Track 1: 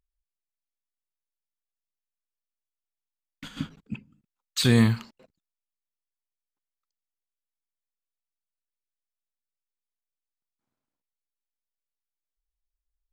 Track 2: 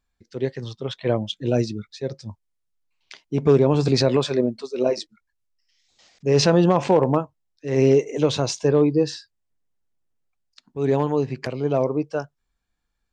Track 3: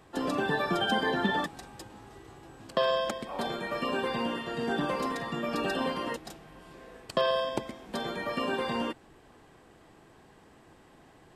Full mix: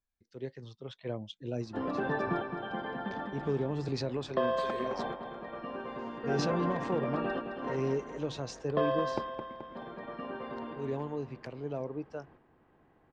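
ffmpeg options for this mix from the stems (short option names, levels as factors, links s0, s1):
-filter_complex "[0:a]highpass=f=1200:p=1,aemphasis=mode=reproduction:type=75fm,volume=0.178[s0];[1:a]acrossover=split=390|3000[s1][s2][s3];[s2]acompressor=threshold=0.0708:ratio=2[s4];[s1][s4][s3]amix=inputs=3:normalize=0,volume=0.188,asplit=2[s5][s6];[2:a]lowpass=2000,adelay=1600,volume=0.708,asplit=2[s7][s8];[s8]volume=0.447[s9];[s6]apad=whole_len=571224[s10];[s7][s10]sidechaingate=range=0.0398:threshold=0.00112:ratio=16:detection=peak[s11];[s9]aecho=0:1:215|430|645|860|1075|1290|1505|1720|1935:1|0.57|0.325|0.185|0.106|0.0602|0.0343|0.0195|0.0111[s12];[s0][s5][s11][s12]amix=inputs=4:normalize=0,highshelf=f=6000:g=-6.5"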